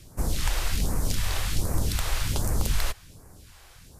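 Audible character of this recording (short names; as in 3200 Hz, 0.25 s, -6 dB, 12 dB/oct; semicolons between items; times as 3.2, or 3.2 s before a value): phasing stages 2, 1.3 Hz, lowest notch 180–3200 Hz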